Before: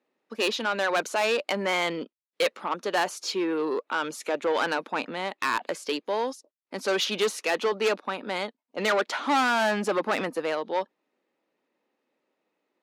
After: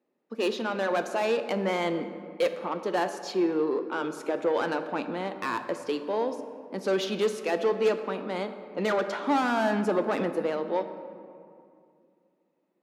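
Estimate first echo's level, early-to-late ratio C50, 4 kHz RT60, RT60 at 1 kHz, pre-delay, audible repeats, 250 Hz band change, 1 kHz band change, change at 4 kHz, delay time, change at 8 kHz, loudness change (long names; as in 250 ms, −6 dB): no echo audible, 10.0 dB, 1.3 s, 2.3 s, 6 ms, no echo audible, +2.5 dB, −2.5 dB, −7.5 dB, no echo audible, −8.5 dB, −1.5 dB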